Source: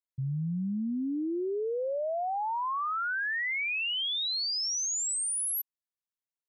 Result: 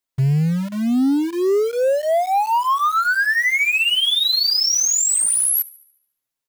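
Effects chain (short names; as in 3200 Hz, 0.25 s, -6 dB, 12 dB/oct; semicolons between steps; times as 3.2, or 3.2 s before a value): comb 7.5 ms, depth 72%; in parallel at -11.5 dB: companded quantiser 2-bit; on the sum: thin delay 72 ms, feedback 50%, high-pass 1600 Hz, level -21 dB; gain +8.5 dB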